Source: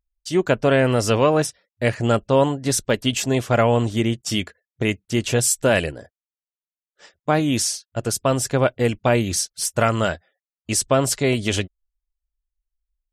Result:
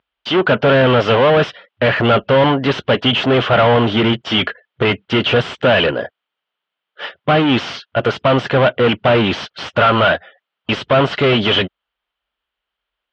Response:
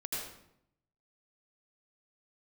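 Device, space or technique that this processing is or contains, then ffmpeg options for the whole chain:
overdrive pedal into a guitar cabinet: -filter_complex "[0:a]asplit=2[s0][s1];[s1]highpass=f=720:p=1,volume=39.8,asoftclip=type=tanh:threshold=0.631[s2];[s0][s2]amix=inputs=2:normalize=0,lowpass=f=1200:p=1,volume=0.501,highpass=92,equalizer=f=320:t=q:w=4:g=-4,equalizer=f=1400:t=q:w=4:g=4,equalizer=f=3100:t=q:w=4:g=10,lowpass=f=3900:w=0.5412,lowpass=f=3900:w=1.3066"

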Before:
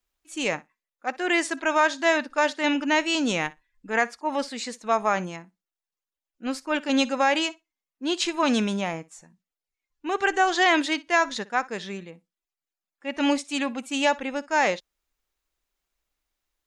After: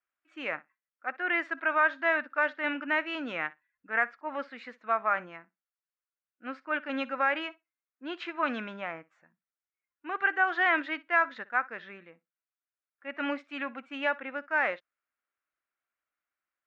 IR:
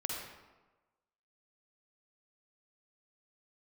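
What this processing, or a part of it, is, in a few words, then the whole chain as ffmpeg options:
bass cabinet: -af "highpass=71,equalizer=f=190:t=q:w=4:g=-5,equalizer=f=420:t=q:w=4:g=-7,equalizer=f=870:t=q:w=4:g=-6,equalizer=f=1400:t=q:w=4:g=6,lowpass=f=2100:w=0.5412,lowpass=f=2100:w=1.3066,aemphasis=mode=production:type=riaa,volume=0.596"

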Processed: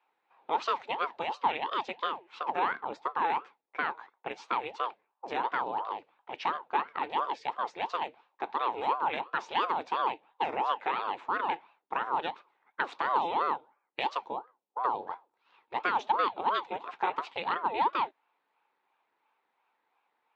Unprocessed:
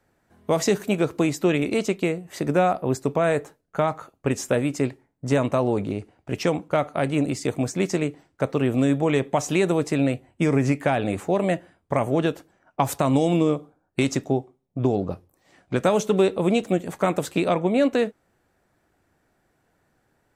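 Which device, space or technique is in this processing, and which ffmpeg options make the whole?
voice changer toy: -af "aeval=exprs='val(0)*sin(2*PI*530*n/s+530*0.7/2.9*sin(2*PI*2.9*n/s))':c=same,highpass=500,equalizer=f=610:t=q:w=4:g=-8,equalizer=f=880:t=q:w=4:g=9,equalizer=f=2500:t=q:w=4:g=4,equalizer=f=3700:t=q:w=4:g=5,lowpass=f=4000:w=0.5412,lowpass=f=4000:w=1.3066,volume=0.501"

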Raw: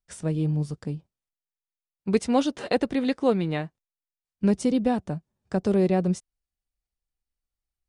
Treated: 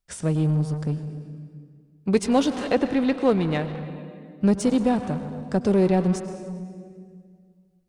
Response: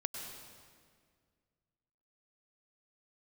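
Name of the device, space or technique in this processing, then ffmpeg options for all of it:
saturated reverb return: -filter_complex "[0:a]asettb=1/sr,asplit=3[s0][s1][s2];[s0]atrim=end=2.694[s3];[s1]atrim=start=2.69:end=3.3,asetpts=PTS-STARTPTS,afade=t=in:d=0.004:c=qsin,afade=t=out:st=0.606:d=0.004:c=qsin,acrossover=split=3600[s4][s5];[s5]acompressor=threshold=0.00251:ratio=4:attack=1:release=60[s6];[s4][s6]amix=inputs=2:normalize=0[s7];[s2]atrim=start=3.296[s8];[s3][s7]acrossfade=d=0.004:c1=hsin:c2=qsin[s9];[s9][s8]acrossfade=d=0.004:c1=qsin:c2=hsin,asplit=2[s10][s11];[1:a]atrim=start_sample=2205[s12];[s11][s12]afir=irnorm=-1:irlink=0,asoftclip=type=tanh:threshold=0.0422,volume=0.944[s13];[s10][s13]amix=inputs=2:normalize=0"

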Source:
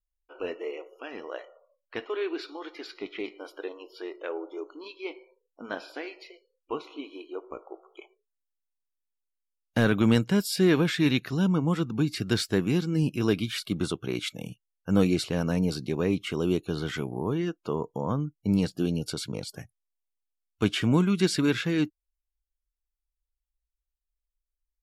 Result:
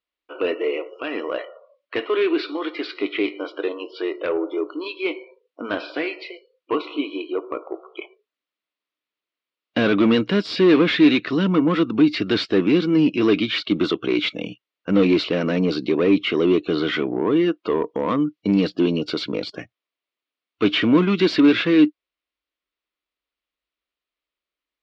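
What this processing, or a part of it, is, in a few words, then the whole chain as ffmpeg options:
overdrive pedal into a guitar cabinet: -filter_complex "[0:a]asplit=2[s0][s1];[s1]highpass=f=720:p=1,volume=11.2,asoftclip=type=tanh:threshold=0.316[s2];[s0][s2]amix=inputs=2:normalize=0,lowpass=f=2800:p=1,volume=0.501,highpass=100,equalizer=f=140:t=q:w=4:g=-7,equalizer=f=300:t=q:w=4:g=7,equalizer=f=830:t=q:w=4:g=-10,equalizer=f=1600:t=q:w=4:g=-6,lowpass=f=4200:w=0.5412,lowpass=f=4200:w=1.3066,asettb=1/sr,asplit=3[s3][s4][s5];[s3]atrim=end=18.084[s6];[s4]atrim=start=18.08:end=18.56,asetpts=PTS-STARTPTS,afade=t=in:d=0.004:c=qsin,afade=t=out:st=0.476:d=0.004:c=qsin,highshelf=f=3600:g=7.5[s7];[s5]atrim=start=18.556[s8];[s6][s7]acrossfade=d=0.004:c1=hsin:c2=qsin[s9];[s9][s8]acrossfade=d=0.004:c1=qsin:c2=hsin,volume=1.26"

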